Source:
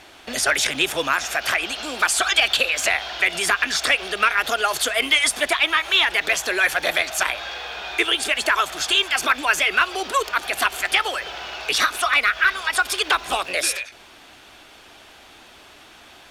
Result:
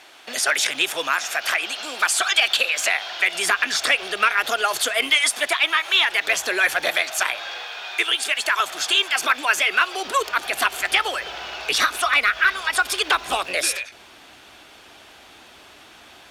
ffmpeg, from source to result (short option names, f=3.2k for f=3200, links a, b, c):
-af "asetnsamples=n=441:p=0,asendcmd='3.39 highpass f 240;5.1 highpass f 560;6.29 highpass f 170;6.89 highpass f 460;7.64 highpass f 980;8.6 highpass f 390;10.05 highpass f 120;10.82 highpass f 53',highpass=f=610:p=1"